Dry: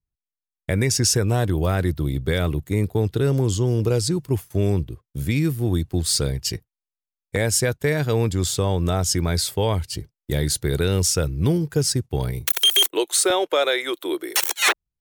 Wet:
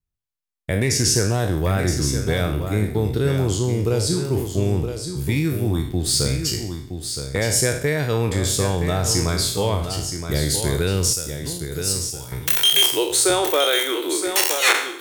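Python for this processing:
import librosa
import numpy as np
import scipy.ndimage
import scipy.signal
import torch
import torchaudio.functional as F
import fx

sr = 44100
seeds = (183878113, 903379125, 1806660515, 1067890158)

y = fx.spec_trails(x, sr, decay_s=0.57)
y = fx.pre_emphasis(y, sr, coefficient=0.8, at=(11.13, 12.32))
y = y + 10.0 ** (-8.0 / 20.0) * np.pad(y, (int(969 * sr / 1000.0), 0))[:len(y)]
y = fx.rev_schroeder(y, sr, rt60_s=0.98, comb_ms=30, drr_db=18.5)
y = fx.doppler_dist(y, sr, depth_ms=0.1, at=(0.78, 1.4))
y = y * 10.0 ** (-1.0 / 20.0)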